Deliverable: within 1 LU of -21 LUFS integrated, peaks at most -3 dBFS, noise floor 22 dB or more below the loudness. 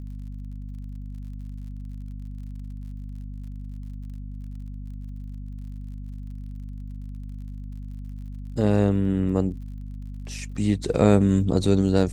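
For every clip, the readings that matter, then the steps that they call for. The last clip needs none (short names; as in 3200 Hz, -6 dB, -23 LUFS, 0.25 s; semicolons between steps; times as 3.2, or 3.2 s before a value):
ticks 47/s; hum 50 Hz; harmonics up to 250 Hz; hum level -33 dBFS; loudness -22.5 LUFS; peak -4.5 dBFS; loudness target -21.0 LUFS
-> de-click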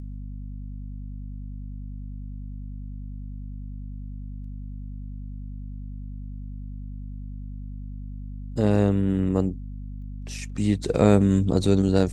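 ticks 0.25/s; hum 50 Hz; harmonics up to 250 Hz; hum level -33 dBFS
-> de-hum 50 Hz, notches 5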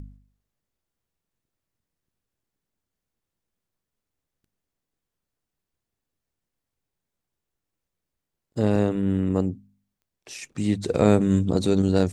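hum none; loudness -23.0 LUFS; peak -4.0 dBFS; loudness target -21.0 LUFS
-> gain +2 dB; limiter -3 dBFS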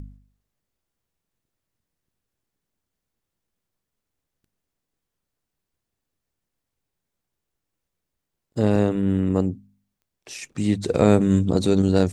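loudness -21.0 LUFS; peak -3.0 dBFS; noise floor -83 dBFS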